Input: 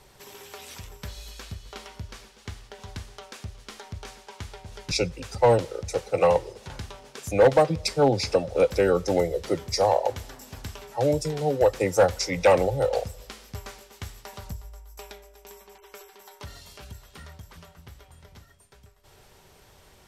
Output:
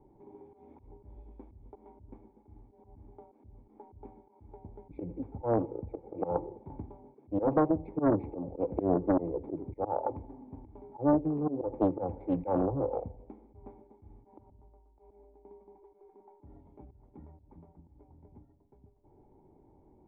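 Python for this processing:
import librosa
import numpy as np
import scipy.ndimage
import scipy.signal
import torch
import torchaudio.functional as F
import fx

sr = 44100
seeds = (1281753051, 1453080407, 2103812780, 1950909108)

y = fx.low_shelf(x, sr, hz=110.0, db=-11.5, at=(14.43, 15.02))
y = fx.echo_feedback(y, sr, ms=86, feedback_pct=47, wet_db=-21.5)
y = fx.auto_swell(y, sr, attack_ms=119.0)
y = fx.formant_cascade(y, sr, vowel='u')
y = fx.doppler_dist(y, sr, depth_ms=0.74)
y = F.gain(torch.from_numpy(y), 8.0).numpy()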